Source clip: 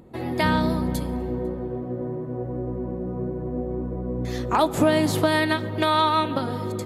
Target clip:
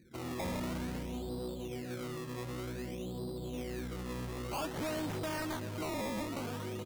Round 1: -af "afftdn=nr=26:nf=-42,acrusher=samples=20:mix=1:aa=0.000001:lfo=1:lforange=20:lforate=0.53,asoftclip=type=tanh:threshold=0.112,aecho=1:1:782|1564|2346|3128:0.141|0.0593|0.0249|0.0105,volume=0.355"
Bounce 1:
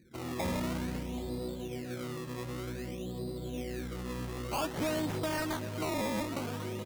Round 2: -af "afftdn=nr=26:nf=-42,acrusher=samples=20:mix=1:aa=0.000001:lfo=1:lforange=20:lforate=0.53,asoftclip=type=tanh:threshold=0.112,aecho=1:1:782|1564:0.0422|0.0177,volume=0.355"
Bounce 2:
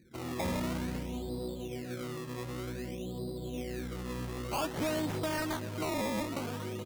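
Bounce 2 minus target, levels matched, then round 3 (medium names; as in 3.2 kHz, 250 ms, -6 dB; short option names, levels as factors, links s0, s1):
saturation: distortion -5 dB
-af "afftdn=nr=26:nf=-42,acrusher=samples=20:mix=1:aa=0.000001:lfo=1:lforange=20:lforate=0.53,asoftclip=type=tanh:threshold=0.0562,aecho=1:1:782|1564:0.0422|0.0177,volume=0.355"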